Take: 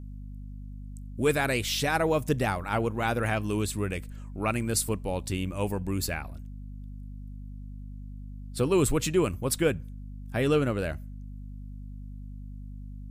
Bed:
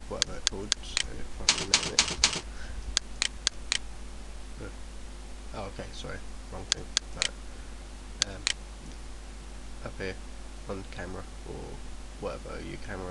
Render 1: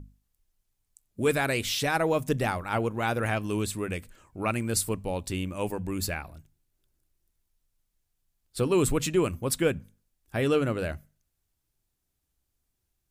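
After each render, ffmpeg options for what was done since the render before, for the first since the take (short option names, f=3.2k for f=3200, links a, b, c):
-af "bandreject=f=50:t=h:w=6,bandreject=f=100:t=h:w=6,bandreject=f=150:t=h:w=6,bandreject=f=200:t=h:w=6,bandreject=f=250:t=h:w=6"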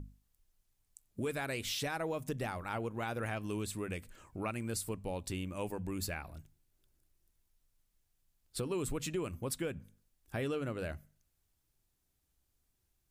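-af "alimiter=limit=-17dB:level=0:latency=1:release=154,acompressor=threshold=-41dB:ratio=2"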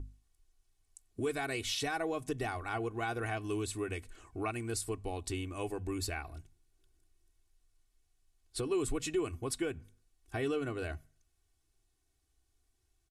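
-af "lowpass=f=11k:w=0.5412,lowpass=f=11k:w=1.3066,aecho=1:1:2.7:0.75"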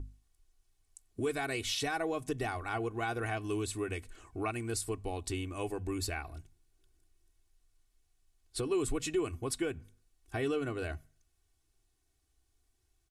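-af "volume=1dB"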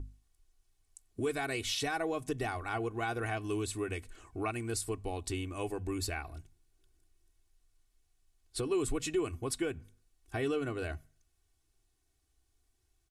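-af anull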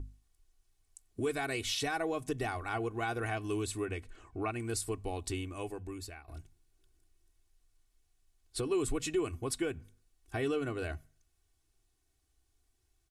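-filter_complex "[0:a]asettb=1/sr,asplit=3[a][b][c];[a]atrim=end=3.854[d];[b]atrim=start=3.85:end=4.6,asetpts=PTS-STARTPTS,afade=t=in:d=0.004:c=qsin,afade=t=out:st=0.746:d=0.004:c=qsin,lowpass=f=3.4k:p=1[e];[c]atrim=start=4.596[f];[d][e]acrossfade=d=0.004:c1=hsin:c2=qsin[g];[g][f]acrossfade=d=0.004:c1=qsin:c2=hsin,asplit=2[h][i];[h]atrim=end=6.28,asetpts=PTS-STARTPTS,afade=t=out:st=5.29:d=0.99:silence=0.16788[j];[i]atrim=start=6.28,asetpts=PTS-STARTPTS,afade=t=in:d=0.004:c=hsin:silence=0.16788[k];[j][k]concat=n=2:v=0:a=1"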